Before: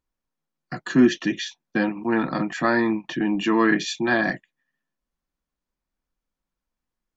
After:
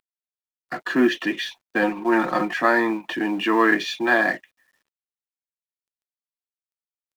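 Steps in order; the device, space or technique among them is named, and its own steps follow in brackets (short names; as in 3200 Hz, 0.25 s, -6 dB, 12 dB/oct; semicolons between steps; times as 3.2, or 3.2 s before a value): phone line with mismatched companding (BPF 380–3300 Hz; G.711 law mismatch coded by mu); 1.82–2.58 comb 5.6 ms, depth 68%; gain +3.5 dB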